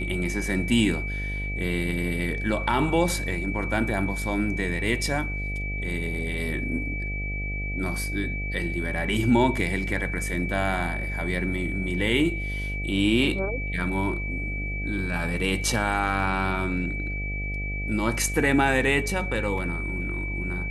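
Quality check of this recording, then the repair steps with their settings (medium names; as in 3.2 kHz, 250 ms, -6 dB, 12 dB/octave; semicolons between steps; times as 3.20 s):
buzz 50 Hz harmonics 15 -31 dBFS
whine 2.3 kHz -32 dBFS
19.58 s: dropout 2 ms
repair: band-stop 2.3 kHz, Q 30; de-hum 50 Hz, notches 15; interpolate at 19.58 s, 2 ms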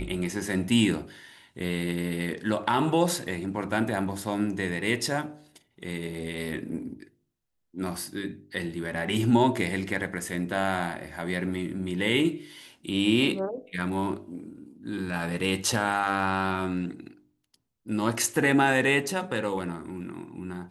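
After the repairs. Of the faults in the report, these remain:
nothing left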